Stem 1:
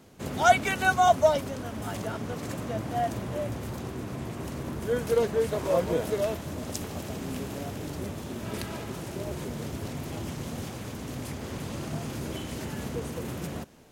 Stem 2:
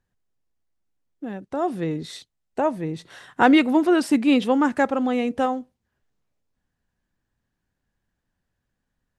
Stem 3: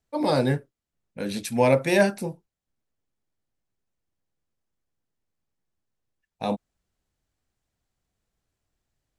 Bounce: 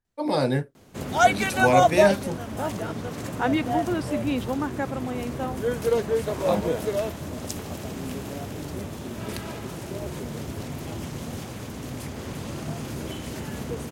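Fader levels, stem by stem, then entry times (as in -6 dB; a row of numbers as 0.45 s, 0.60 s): +1.5 dB, -9.0 dB, -1.0 dB; 0.75 s, 0.00 s, 0.05 s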